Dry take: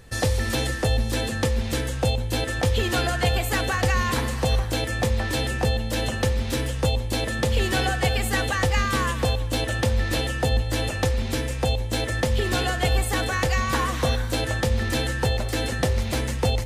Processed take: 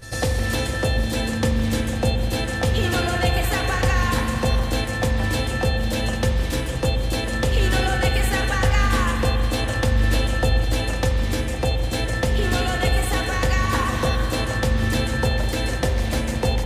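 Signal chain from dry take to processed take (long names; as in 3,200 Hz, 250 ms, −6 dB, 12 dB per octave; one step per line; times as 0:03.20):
backwards echo 97 ms −11 dB
spring reverb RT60 3.8 s, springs 40 ms, chirp 40 ms, DRR 4.5 dB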